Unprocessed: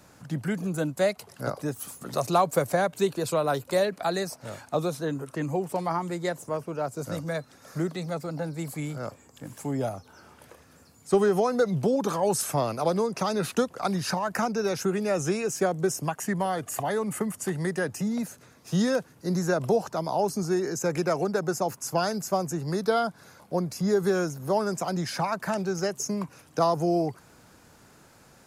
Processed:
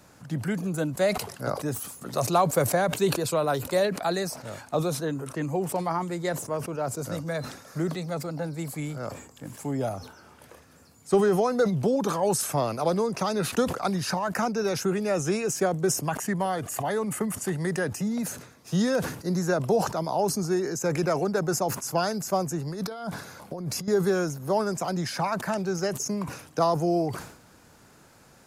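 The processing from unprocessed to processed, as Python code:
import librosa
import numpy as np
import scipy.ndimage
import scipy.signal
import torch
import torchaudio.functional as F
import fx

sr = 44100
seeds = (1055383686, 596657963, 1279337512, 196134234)

y = fx.over_compress(x, sr, threshold_db=-34.0, ratio=-1.0, at=(22.67, 23.88))
y = fx.sustainer(y, sr, db_per_s=86.0)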